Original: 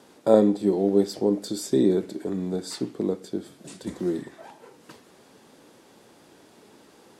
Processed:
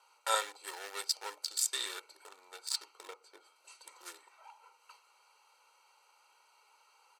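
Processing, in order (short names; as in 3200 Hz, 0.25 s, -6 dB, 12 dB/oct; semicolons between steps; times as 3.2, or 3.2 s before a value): Wiener smoothing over 25 samples; HPF 1200 Hz 24 dB/oct; high shelf 4500 Hz +10.5 dB; comb 2.2 ms, depth 53%; 3.07–3.56 tilt -2 dB/oct; gain +5 dB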